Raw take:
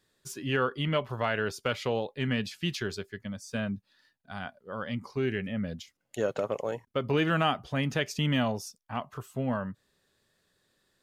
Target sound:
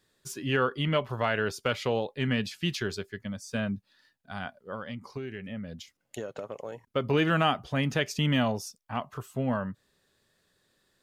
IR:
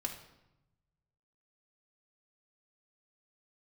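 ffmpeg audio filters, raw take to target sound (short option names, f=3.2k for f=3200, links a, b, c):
-filter_complex "[0:a]asettb=1/sr,asplit=3[a][b][c];[a]atrim=end=4.744[d];[b]atrim=start=4.74:end=6.84,asetpts=PTS-STARTPTS,afade=t=in:d=0.004:c=qsin,afade=t=out:st=2.096:d=0.004:c=qsin,acompressor=threshold=-36dB:ratio=6[e];[c]atrim=start=6.836[f];[d][e]acrossfade=d=0.004:c1=hsin:c2=qsin[g];[g][f]acrossfade=d=0.004:c1=qsin:c2=hsin,volume=1.5dB"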